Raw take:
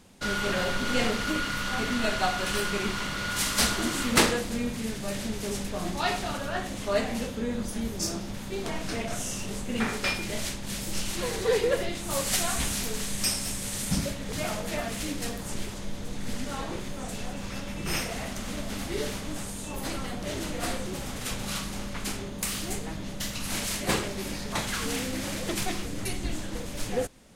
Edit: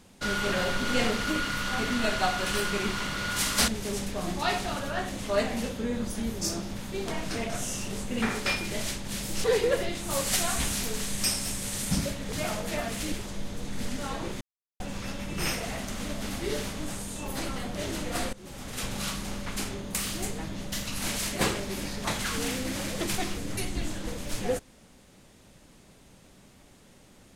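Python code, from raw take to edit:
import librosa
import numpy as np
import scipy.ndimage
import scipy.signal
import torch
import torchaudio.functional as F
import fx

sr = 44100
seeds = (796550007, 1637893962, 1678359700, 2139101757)

y = fx.edit(x, sr, fx.cut(start_s=3.68, length_s=1.58),
    fx.cut(start_s=11.02, length_s=0.42),
    fx.cut(start_s=15.12, length_s=0.48),
    fx.silence(start_s=16.89, length_s=0.39),
    fx.fade_in_from(start_s=20.81, length_s=0.54, floor_db=-19.5), tone=tone)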